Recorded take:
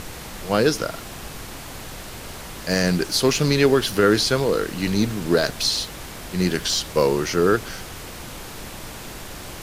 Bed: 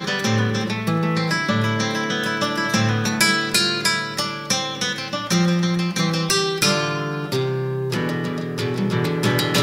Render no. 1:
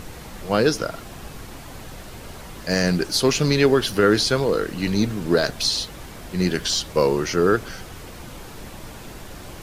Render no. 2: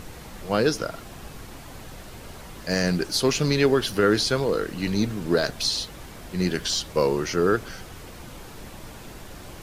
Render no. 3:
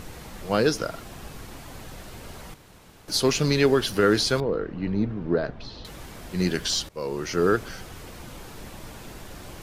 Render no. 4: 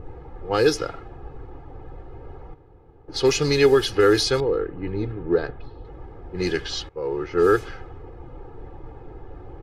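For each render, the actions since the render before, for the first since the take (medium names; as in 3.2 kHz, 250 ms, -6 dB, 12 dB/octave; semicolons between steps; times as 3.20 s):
noise reduction 6 dB, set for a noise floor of -37 dBFS
trim -3 dB
2.54–3.08 s: room tone; 4.40–5.85 s: tape spacing loss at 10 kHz 44 dB; 6.89–7.44 s: fade in, from -20.5 dB
level-controlled noise filter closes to 620 Hz, open at -16.5 dBFS; comb 2.4 ms, depth 78%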